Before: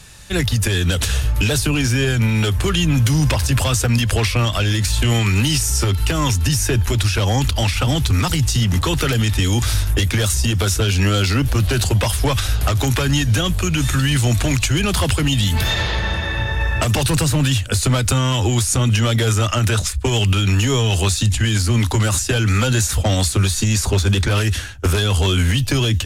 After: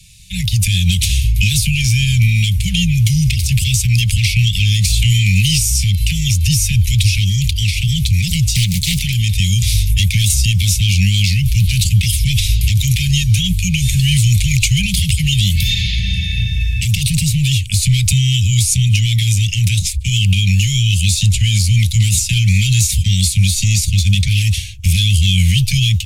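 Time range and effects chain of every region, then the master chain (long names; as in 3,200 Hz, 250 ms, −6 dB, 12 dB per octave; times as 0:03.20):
0:08.55–0:08.99: high-shelf EQ 4,700 Hz +11 dB + comb filter 6.5 ms, depth 35% + highs frequency-modulated by the lows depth 0.84 ms
whole clip: Chebyshev band-stop filter 190–2,200 Hz, order 5; automatic gain control; level −1 dB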